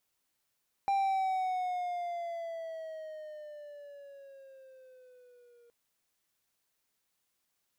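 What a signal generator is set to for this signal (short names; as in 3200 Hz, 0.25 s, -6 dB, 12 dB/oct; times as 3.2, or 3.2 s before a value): gliding synth tone triangle, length 4.82 s, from 793 Hz, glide -9 st, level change -33 dB, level -23.5 dB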